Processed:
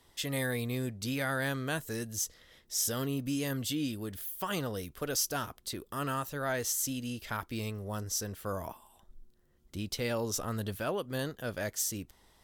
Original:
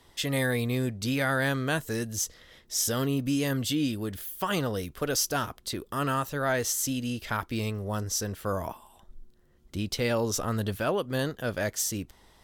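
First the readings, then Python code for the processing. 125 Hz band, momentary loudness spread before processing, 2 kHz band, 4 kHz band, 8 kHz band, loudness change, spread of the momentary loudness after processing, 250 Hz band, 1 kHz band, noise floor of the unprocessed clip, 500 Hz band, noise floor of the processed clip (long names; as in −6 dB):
−6.0 dB, 7 LU, −5.5 dB, −4.5 dB, −3.5 dB, −5.0 dB, 8 LU, −6.0 dB, −6.0 dB, −60 dBFS, −6.0 dB, −66 dBFS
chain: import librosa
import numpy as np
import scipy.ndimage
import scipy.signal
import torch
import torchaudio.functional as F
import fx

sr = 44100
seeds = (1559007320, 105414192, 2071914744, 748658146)

y = fx.high_shelf(x, sr, hz=7300.0, db=5.5)
y = y * 10.0 ** (-6.0 / 20.0)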